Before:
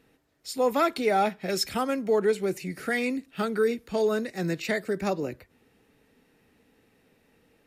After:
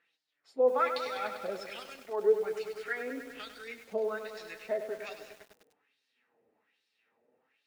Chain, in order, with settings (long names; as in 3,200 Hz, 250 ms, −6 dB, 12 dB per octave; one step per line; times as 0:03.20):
flanger 0.37 Hz, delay 5.7 ms, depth 4.1 ms, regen +42%
auto-filter band-pass sine 1.2 Hz 520–4,600 Hz
feedback echo at a low word length 99 ms, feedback 80%, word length 9 bits, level −9 dB
level +3 dB